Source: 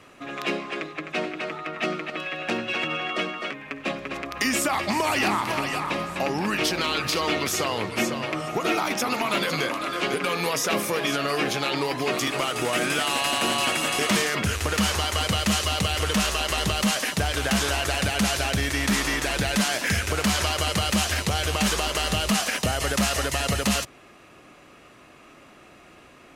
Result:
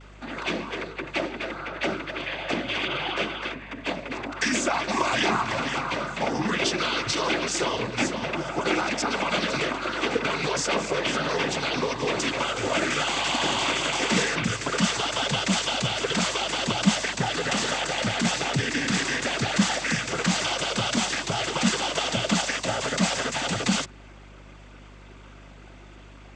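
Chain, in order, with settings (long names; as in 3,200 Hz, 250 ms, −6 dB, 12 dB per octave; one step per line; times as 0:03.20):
cochlear-implant simulation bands 16
mains hum 50 Hz, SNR 21 dB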